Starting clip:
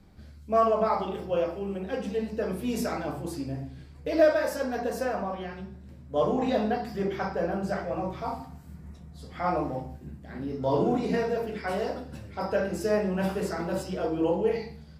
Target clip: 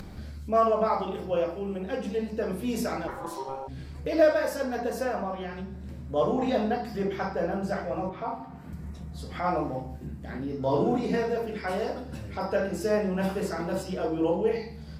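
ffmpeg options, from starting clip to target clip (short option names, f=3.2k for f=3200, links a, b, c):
-filter_complex "[0:a]asplit=3[a][b][c];[a]afade=t=out:st=3.07:d=0.02[d];[b]aeval=exprs='val(0)*sin(2*PI*670*n/s)':c=same,afade=t=in:st=3.07:d=0.02,afade=t=out:st=3.67:d=0.02[e];[c]afade=t=in:st=3.67:d=0.02[f];[d][e][f]amix=inputs=3:normalize=0,asettb=1/sr,asplit=3[g][h][i];[g]atrim=end=8.094[j];[h]atrim=start=8.09:end=8.73,asetpts=PTS-STARTPTS,afade=t=in:d=0.004:c=qsin,afade=t=out:st=0.636:d=0.004:c=qsin,acrossover=split=160 3300:gain=0.251 1 0.178[k][l][m];[k][l][m]amix=inputs=3:normalize=0[n];[i]atrim=start=8.726[o];[j][n]acrossfade=d=0.004:c1=hsin:c2=qsin[p];[p][o]acrossfade=d=0.004:c1=qsin:c2=hsin,acompressor=mode=upward:threshold=-30dB:ratio=2.5"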